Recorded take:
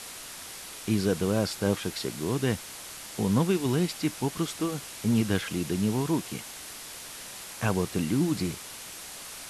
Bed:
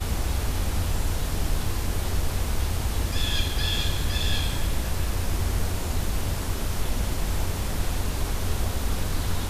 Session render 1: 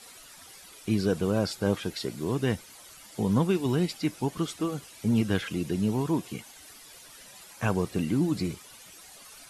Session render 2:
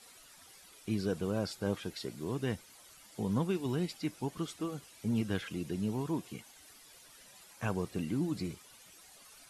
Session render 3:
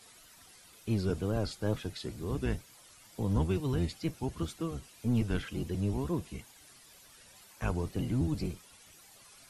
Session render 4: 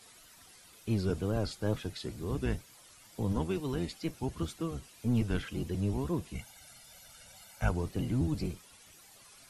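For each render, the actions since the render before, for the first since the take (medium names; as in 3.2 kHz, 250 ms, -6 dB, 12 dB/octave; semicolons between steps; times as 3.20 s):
noise reduction 12 dB, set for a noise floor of -42 dBFS
trim -7.5 dB
octave divider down 1 oct, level +1 dB; wow and flutter 100 cents
3.32–4.13 s: peaking EQ 97 Hz -14 dB; 6.35–7.69 s: comb 1.4 ms, depth 83%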